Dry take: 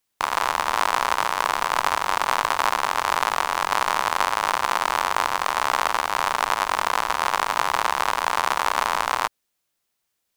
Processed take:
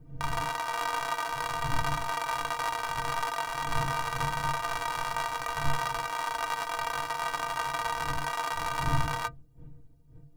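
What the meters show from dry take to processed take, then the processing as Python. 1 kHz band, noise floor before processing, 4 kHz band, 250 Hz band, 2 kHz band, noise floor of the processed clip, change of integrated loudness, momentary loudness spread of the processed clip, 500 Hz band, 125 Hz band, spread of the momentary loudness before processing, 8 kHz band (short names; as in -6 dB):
-9.5 dB, -77 dBFS, -9.0 dB, -2.5 dB, -8.5 dB, -53 dBFS, -9.0 dB, 2 LU, -8.0 dB, +10.0 dB, 1 LU, -9.0 dB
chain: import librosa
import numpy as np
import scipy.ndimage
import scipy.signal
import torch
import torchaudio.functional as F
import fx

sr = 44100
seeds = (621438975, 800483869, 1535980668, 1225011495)

y = fx.dmg_wind(x, sr, seeds[0], corner_hz=95.0, level_db=-27.0)
y = fx.hum_notches(y, sr, base_hz=50, count=6)
y = fx.stiff_resonator(y, sr, f0_hz=140.0, decay_s=0.2, stiffness=0.03)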